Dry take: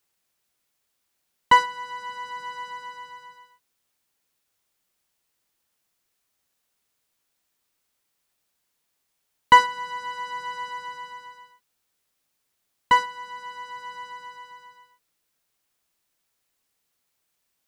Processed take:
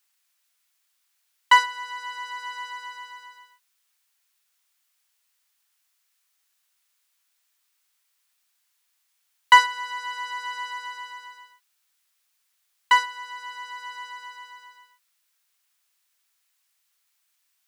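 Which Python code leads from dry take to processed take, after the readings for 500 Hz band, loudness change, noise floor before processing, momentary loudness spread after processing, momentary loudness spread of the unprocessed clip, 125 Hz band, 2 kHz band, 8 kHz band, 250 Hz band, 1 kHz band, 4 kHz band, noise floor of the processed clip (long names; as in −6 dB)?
−11.5 dB, −1.0 dB, −76 dBFS, 23 LU, 23 LU, can't be measured, +3.0 dB, +4.0 dB, below −20 dB, −1.0 dB, +4.0 dB, −73 dBFS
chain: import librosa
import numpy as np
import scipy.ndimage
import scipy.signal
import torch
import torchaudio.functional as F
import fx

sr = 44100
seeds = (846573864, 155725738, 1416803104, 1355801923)

y = scipy.signal.sosfilt(scipy.signal.butter(2, 1200.0, 'highpass', fs=sr, output='sos'), x)
y = F.gain(torch.from_numpy(y), 4.0).numpy()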